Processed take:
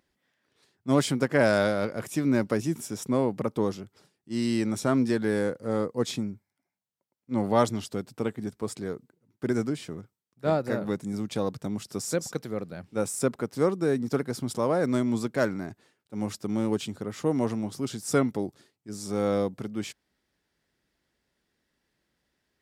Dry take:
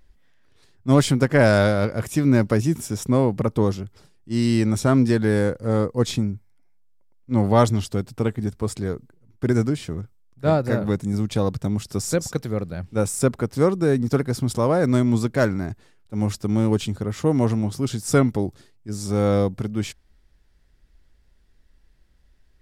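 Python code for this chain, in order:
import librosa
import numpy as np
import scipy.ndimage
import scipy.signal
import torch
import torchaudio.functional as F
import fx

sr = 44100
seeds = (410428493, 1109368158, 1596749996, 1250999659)

y = scipy.signal.sosfilt(scipy.signal.butter(2, 180.0, 'highpass', fs=sr, output='sos'), x)
y = y * librosa.db_to_amplitude(-5.0)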